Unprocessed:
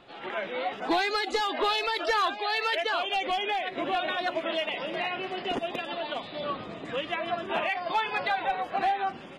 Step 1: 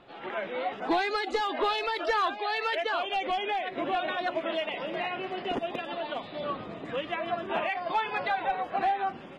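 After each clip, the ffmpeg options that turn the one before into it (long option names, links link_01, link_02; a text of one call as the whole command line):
ffmpeg -i in.wav -af "highshelf=frequency=3400:gain=-9" out.wav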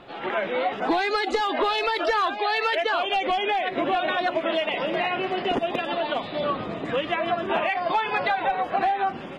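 ffmpeg -i in.wav -af "acompressor=threshold=-29dB:ratio=4,volume=8.5dB" out.wav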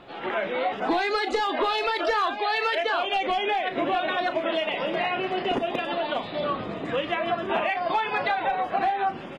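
ffmpeg -i in.wav -filter_complex "[0:a]asplit=2[link_01][link_02];[link_02]adelay=35,volume=-11dB[link_03];[link_01][link_03]amix=inputs=2:normalize=0,volume=-1.5dB" out.wav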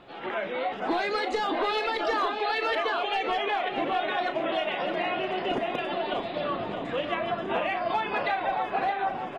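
ffmpeg -i in.wav -filter_complex "[0:a]asplit=2[link_01][link_02];[link_02]adelay=620,lowpass=frequency=2500:poles=1,volume=-5dB,asplit=2[link_03][link_04];[link_04]adelay=620,lowpass=frequency=2500:poles=1,volume=0.46,asplit=2[link_05][link_06];[link_06]adelay=620,lowpass=frequency=2500:poles=1,volume=0.46,asplit=2[link_07][link_08];[link_08]adelay=620,lowpass=frequency=2500:poles=1,volume=0.46,asplit=2[link_09][link_10];[link_10]adelay=620,lowpass=frequency=2500:poles=1,volume=0.46,asplit=2[link_11][link_12];[link_12]adelay=620,lowpass=frequency=2500:poles=1,volume=0.46[link_13];[link_01][link_03][link_05][link_07][link_09][link_11][link_13]amix=inputs=7:normalize=0,volume=-3.5dB" out.wav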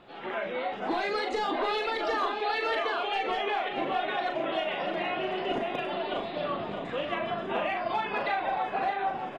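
ffmpeg -i in.wav -filter_complex "[0:a]asplit=2[link_01][link_02];[link_02]adelay=40,volume=-6dB[link_03];[link_01][link_03]amix=inputs=2:normalize=0,volume=-3dB" out.wav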